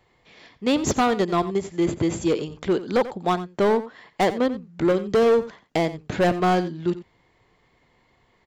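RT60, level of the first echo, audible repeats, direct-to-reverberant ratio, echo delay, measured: none, -15.0 dB, 1, none, 89 ms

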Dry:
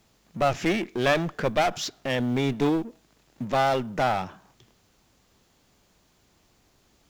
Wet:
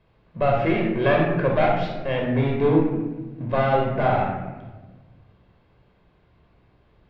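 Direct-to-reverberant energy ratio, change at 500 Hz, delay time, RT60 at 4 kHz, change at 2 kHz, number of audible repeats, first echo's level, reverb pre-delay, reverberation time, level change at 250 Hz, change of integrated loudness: -1.0 dB, +5.0 dB, none, 0.75 s, +1.5 dB, none, none, 18 ms, 1.3 s, +4.0 dB, +3.5 dB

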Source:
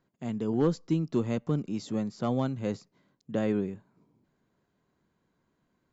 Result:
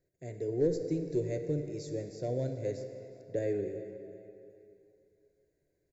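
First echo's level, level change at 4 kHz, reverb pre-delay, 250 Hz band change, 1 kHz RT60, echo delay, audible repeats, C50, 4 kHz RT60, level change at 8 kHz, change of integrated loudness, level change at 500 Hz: -20.0 dB, -8.0 dB, 6 ms, -8.0 dB, 2.9 s, 0.375 s, 3, 6.5 dB, 2.3 s, n/a, -4.0 dB, 0.0 dB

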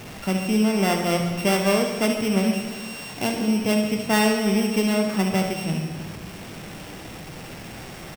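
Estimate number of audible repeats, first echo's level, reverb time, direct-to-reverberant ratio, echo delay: 1, -8.5 dB, 1.8 s, 2.5 dB, 70 ms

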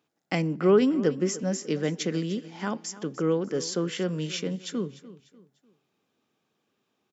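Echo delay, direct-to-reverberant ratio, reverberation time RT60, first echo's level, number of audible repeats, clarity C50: 0.297 s, none, none, -17.0 dB, 3, none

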